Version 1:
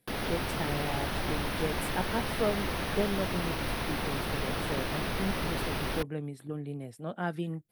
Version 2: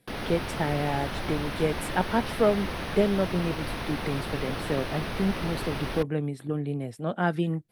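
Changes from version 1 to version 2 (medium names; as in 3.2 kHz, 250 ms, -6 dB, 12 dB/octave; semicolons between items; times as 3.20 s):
speech +7.5 dB; master: add treble shelf 11 kHz -11.5 dB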